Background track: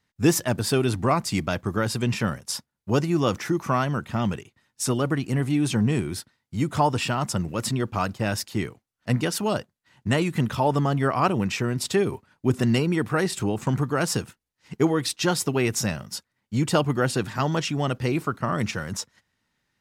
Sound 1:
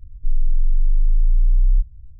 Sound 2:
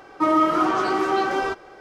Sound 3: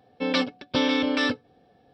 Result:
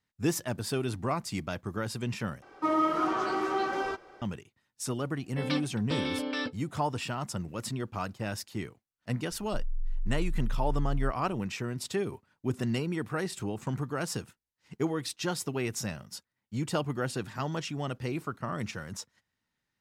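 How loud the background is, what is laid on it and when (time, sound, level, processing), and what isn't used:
background track -9 dB
2.42 replace with 2 -8 dB
5.16 add 3 -9 dB
9.29 add 1 -15.5 dB

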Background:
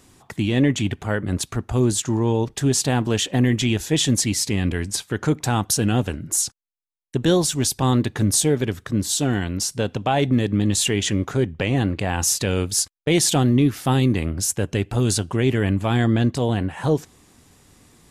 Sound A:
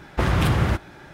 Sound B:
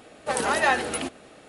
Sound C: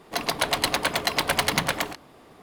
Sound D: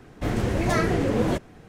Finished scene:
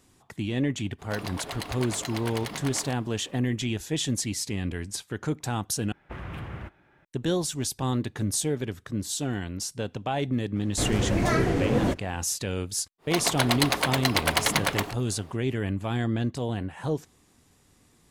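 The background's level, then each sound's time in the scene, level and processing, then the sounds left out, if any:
background -8.5 dB
0.98 add C -4.5 dB, fades 0.02 s + compressor 4:1, threshold -28 dBFS
5.92 replace with A -17.5 dB + resonant high shelf 3500 Hz -8 dB, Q 1.5
10.56 add D -1.5 dB
12.98 add C -1 dB, fades 0.10 s
not used: B

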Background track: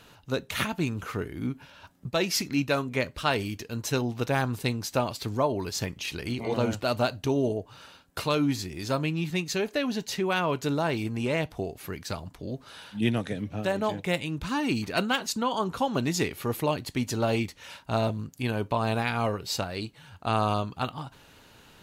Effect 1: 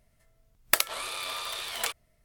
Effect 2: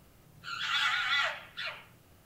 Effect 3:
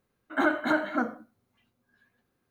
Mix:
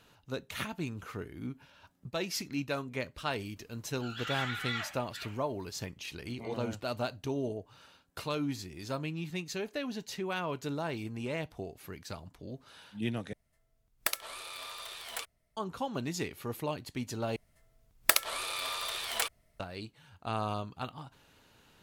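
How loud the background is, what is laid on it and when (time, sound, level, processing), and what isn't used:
background track -8.5 dB
3.56 add 2 -7.5 dB
13.33 replace with 1 -8.5 dB
17.36 replace with 1 -1 dB
not used: 3

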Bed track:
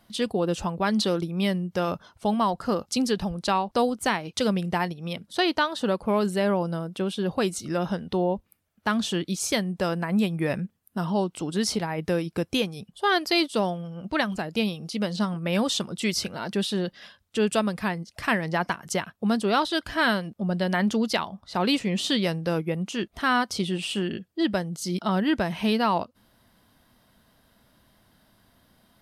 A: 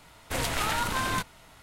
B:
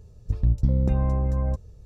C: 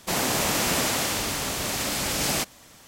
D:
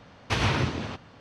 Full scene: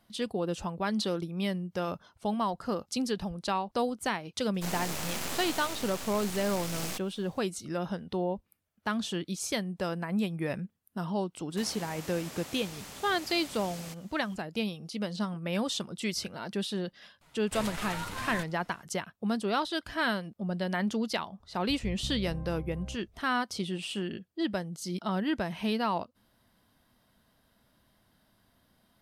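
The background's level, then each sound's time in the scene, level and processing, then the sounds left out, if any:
bed track -6.5 dB
4.54 add C -7.5 dB + half-wave rectifier
11.5 add C -11.5 dB, fades 0.02 s + compressor, threshold -30 dBFS
17.21 add A -5 dB + flange 1.7 Hz, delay 4.9 ms, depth 6.1 ms, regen +39%
21.4 add B -17.5 dB
not used: D

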